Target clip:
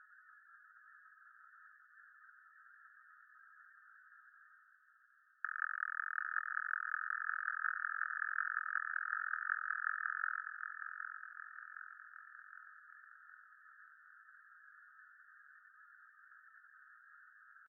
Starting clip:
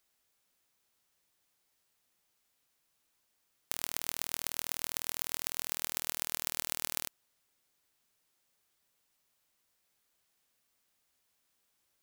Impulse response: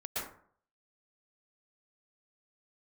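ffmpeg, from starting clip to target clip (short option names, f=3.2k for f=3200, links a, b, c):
-af "afftfilt=real='re*gte(hypot(re,im),0.0000891)':imag='im*gte(hypot(re,im),0.0000891)':win_size=1024:overlap=0.75,areverse,acompressor=mode=upward:threshold=-42dB:ratio=2.5,areverse,atempo=0.68,asuperpass=centerf=1500:order=20:qfactor=2.7,aecho=1:1:764|1528|2292|3056|3820|4584|5348:0.398|0.223|0.125|0.0699|0.0392|0.0219|0.0123,volume=13dB"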